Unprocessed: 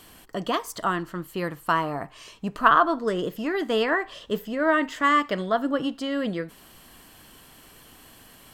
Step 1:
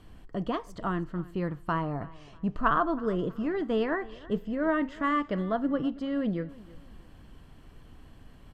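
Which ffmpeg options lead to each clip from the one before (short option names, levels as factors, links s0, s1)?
-af "aemphasis=mode=reproduction:type=riaa,aecho=1:1:322|644|966:0.0944|0.0321|0.0109,volume=0.422"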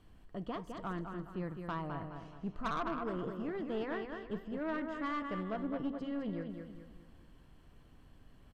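-af "aecho=1:1:209|418|627|836|1045:0.473|0.185|0.072|0.0281|0.0109,aeval=exprs='(tanh(12.6*val(0)+0.35)-tanh(0.35))/12.6':c=same,volume=0.398"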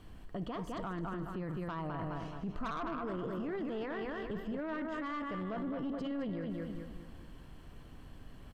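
-af "alimiter=level_in=5.62:limit=0.0631:level=0:latency=1:release=13,volume=0.178,volume=2.51"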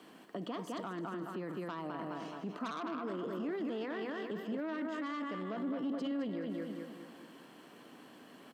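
-filter_complex "[0:a]highpass=f=230:w=0.5412,highpass=f=230:w=1.3066,acrossover=split=290|3000[s0][s1][s2];[s1]acompressor=threshold=0.00355:ratio=2[s3];[s0][s3][s2]amix=inputs=3:normalize=0,volume=1.68"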